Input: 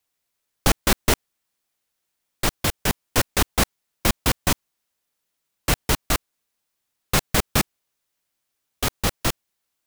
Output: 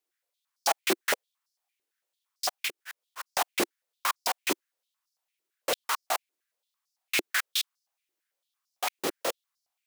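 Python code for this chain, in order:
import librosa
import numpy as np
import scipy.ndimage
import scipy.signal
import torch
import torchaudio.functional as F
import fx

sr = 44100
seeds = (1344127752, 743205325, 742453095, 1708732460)

y = fx.auto_swell(x, sr, attack_ms=174.0, at=(2.67, 3.26), fade=0.02)
y = fx.filter_held_highpass(y, sr, hz=8.9, low_hz=350.0, high_hz=5100.0)
y = y * librosa.db_to_amplitude(-8.5)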